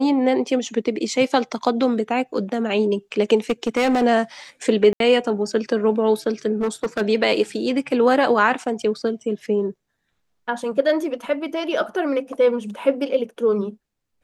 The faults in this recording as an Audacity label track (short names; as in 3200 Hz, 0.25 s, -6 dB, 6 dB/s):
3.500000	4.040000	clipped -14.5 dBFS
4.930000	5.000000	gap 72 ms
6.610000	7.020000	clipped -18 dBFS